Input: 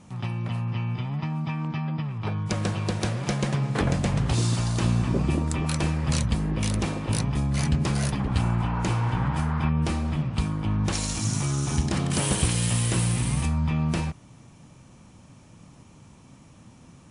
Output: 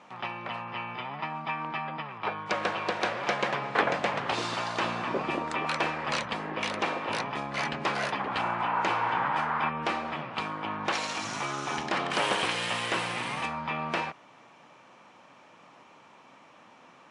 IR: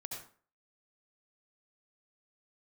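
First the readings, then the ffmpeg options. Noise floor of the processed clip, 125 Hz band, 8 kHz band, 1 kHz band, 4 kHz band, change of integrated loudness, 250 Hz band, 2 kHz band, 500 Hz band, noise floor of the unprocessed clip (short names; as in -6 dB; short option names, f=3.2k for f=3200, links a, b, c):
-55 dBFS, -20.0 dB, -12.0 dB, +6.0 dB, +0.5 dB, -4.5 dB, -10.5 dB, +5.5 dB, +1.5 dB, -51 dBFS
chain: -af "highpass=630,lowpass=2.7k,volume=7dB"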